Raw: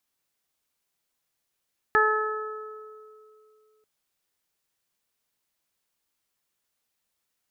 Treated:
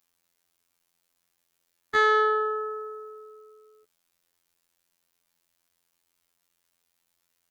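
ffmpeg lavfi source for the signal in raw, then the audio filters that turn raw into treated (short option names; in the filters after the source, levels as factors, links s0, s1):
-f lavfi -i "aevalsrc='0.0708*pow(10,-3*t/2.73)*sin(2*PI*431*t)+0.0562*pow(10,-3*t/1.28)*sin(2*PI*862*t)+0.106*pow(10,-3*t/2.03)*sin(2*PI*1293*t)+0.106*pow(10,-3*t/1.14)*sin(2*PI*1724*t)':d=1.89:s=44100"
-filter_complex "[0:a]asplit=2[s0][s1];[s1]alimiter=limit=0.106:level=0:latency=1:release=62,volume=1.41[s2];[s0][s2]amix=inputs=2:normalize=0,asoftclip=type=tanh:threshold=0.2,afftfilt=real='hypot(re,im)*cos(PI*b)':imag='0':win_size=2048:overlap=0.75"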